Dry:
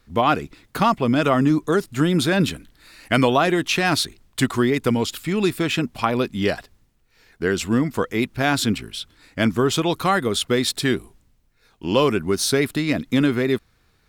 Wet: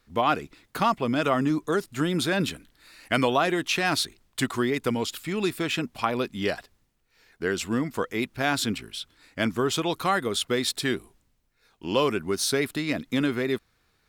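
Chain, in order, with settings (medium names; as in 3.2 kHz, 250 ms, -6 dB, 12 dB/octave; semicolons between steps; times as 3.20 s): bass shelf 250 Hz -6 dB; trim -4 dB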